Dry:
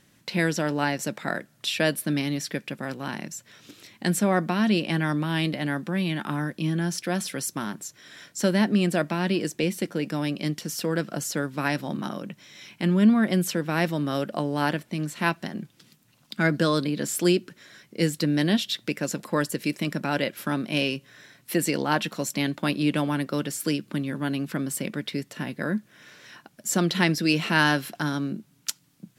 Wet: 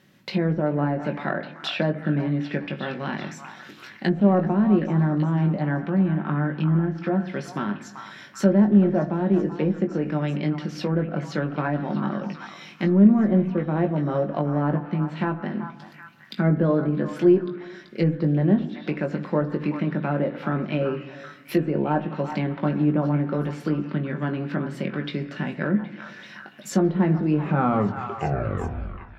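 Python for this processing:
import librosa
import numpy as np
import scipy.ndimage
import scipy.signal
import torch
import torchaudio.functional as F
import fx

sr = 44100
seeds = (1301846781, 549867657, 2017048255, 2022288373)

p1 = fx.tape_stop_end(x, sr, length_s=1.86)
p2 = scipy.signal.sosfilt(scipy.signal.butter(2, 88.0, 'highpass', fs=sr, output='sos'), p1)
p3 = fx.peak_eq(p2, sr, hz=8900.0, db=-13.5, octaves=1.2)
p4 = 10.0 ** (-19.5 / 20.0) * np.tanh(p3 / 10.0 ** (-19.5 / 20.0))
p5 = p3 + (p4 * 10.0 ** (-10.0 / 20.0))
p6 = fx.room_shoebox(p5, sr, seeds[0], volume_m3=3900.0, walls='furnished', distance_m=1.1)
p7 = fx.env_lowpass_down(p6, sr, base_hz=880.0, full_db=-20.0)
p8 = fx.doubler(p7, sr, ms=20.0, db=-7)
y = p8 + fx.echo_stepped(p8, sr, ms=384, hz=1100.0, octaves=0.7, feedback_pct=70, wet_db=-6.5, dry=0)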